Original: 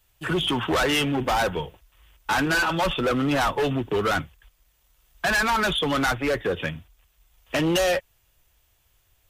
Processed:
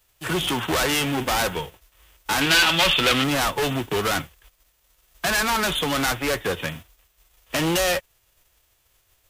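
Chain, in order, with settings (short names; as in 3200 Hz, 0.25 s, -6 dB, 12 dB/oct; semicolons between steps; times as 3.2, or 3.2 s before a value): spectral whitening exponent 0.6; 2.41–3.24 bell 3100 Hz +11 dB 1.5 oct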